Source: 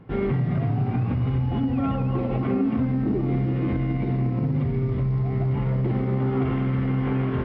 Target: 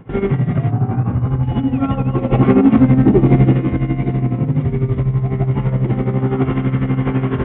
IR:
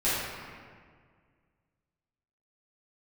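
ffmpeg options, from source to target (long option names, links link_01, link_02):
-filter_complex "[0:a]asettb=1/sr,asplit=3[link_01][link_02][link_03];[link_01]atrim=end=0.714[link_04];[link_02]atrim=start=0.71:end=1.43,asetpts=PTS-STARTPTS,afade=type=in:duration=0.004:curve=qsin,afade=type=out:start_time=0.716:duration=0.004:curve=qsin,highshelf=frequency=1800:width_type=q:width=1.5:gain=-7.5[link_05];[link_03]atrim=start=1.426[link_06];[link_04][link_05]acrossfade=duration=0.004:curve1=hsin:curve2=qsin[link_07];[link_07][link_06]acrossfade=duration=0.004:curve1=qsin:curve2=hsin,asplit=3[link_08][link_09][link_10];[link_08]afade=type=out:start_time=2.32:duration=0.02[link_11];[link_09]acontrast=84,afade=type=in:start_time=2.32:duration=0.02,afade=type=out:start_time=3.56:duration=0.02[link_12];[link_10]afade=type=in:start_time=3.56:duration=0.02[link_13];[link_11][link_12][link_13]amix=inputs=3:normalize=0,aresample=8000,aresample=44100,acontrast=87,tremolo=f=12:d=0.68,volume=2.5dB"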